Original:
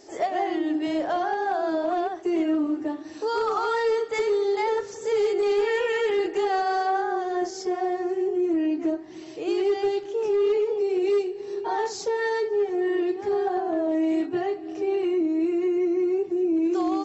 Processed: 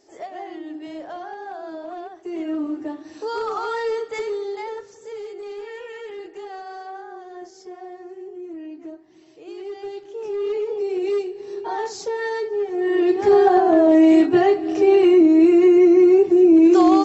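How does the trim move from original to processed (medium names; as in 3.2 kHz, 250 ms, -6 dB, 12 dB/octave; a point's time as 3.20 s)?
2.14 s -8.5 dB
2.61 s -1 dB
4.05 s -1 dB
5.25 s -11.5 dB
9.53 s -11.5 dB
10.75 s 0 dB
12.69 s 0 dB
13.24 s +11 dB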